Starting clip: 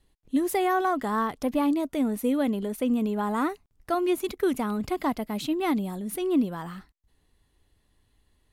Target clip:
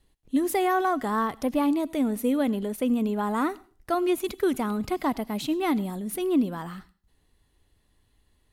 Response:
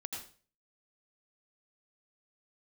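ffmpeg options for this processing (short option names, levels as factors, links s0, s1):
-filter_complex "[0:a]asplit=2[s0][s1];[1:a]atrim=start_sample=2205,highshelf=f=4000:g=8[s2];[s1][s2]afir=irnorm=-1:irlink=0,volume=0.106[s3];[s0][s3]amix=inputs=2:normalize=0"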